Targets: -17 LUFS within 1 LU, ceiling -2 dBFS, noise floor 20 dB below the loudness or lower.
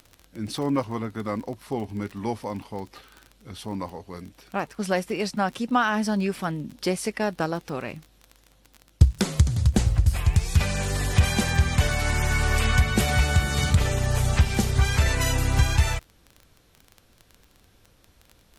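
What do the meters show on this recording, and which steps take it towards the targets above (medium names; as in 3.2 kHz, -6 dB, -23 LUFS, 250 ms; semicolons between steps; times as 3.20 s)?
tick rate 23 per s; loudness -24.5 LUFS; peak level -4.5 dBFS; loudness target -17.0 LUFS
-> de-click; trim +7.5 dB; peak limiter -2 dBFS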